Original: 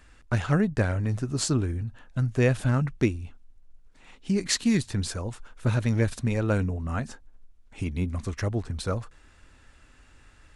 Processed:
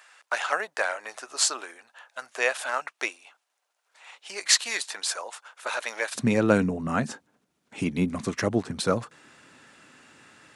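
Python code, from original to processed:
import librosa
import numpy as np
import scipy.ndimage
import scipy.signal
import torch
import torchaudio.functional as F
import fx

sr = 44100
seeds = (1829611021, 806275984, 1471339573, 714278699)

y = fx.highpass(x, sr, hz=fx.steps((0.0, 650.0), (6.15, 150.0)), slope=24)
y = y * 10.0 ** (6.5 / 20.0)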